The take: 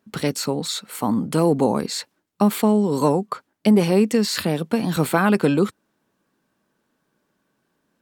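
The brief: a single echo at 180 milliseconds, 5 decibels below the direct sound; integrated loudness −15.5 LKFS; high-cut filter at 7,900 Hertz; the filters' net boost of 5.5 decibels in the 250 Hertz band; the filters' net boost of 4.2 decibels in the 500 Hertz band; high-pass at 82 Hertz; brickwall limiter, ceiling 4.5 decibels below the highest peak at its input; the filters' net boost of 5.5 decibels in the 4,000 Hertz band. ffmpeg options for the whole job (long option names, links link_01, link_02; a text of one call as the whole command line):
ffmpeg -i in.wav -af "highpass=82,lowpass=7900,equalizer=frequency=250:width_type=o:gain=6.5,equalizer=frequency=500:width_type=o:gain=3,equalizer=frequency=4000:width_type=o:gain=6.5,alimiter=limit=-5.5dB:level=0:latency=1,aecho=1:1:180:0.562,volume=0.5dB" out.wav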